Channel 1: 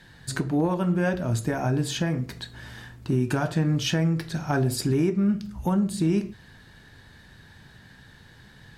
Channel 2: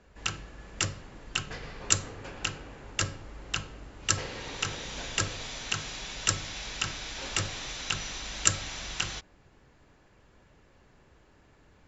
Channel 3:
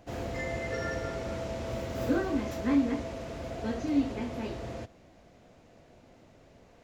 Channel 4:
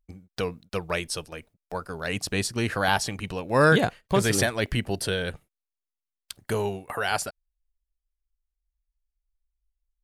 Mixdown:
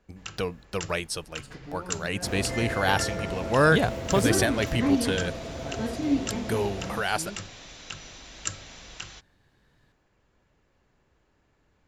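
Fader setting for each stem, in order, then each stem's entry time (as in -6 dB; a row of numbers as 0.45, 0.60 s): -18.0, -8.0, +2.0, -1.0 dB; 1.15, 0.00, 2.15, 0.00 s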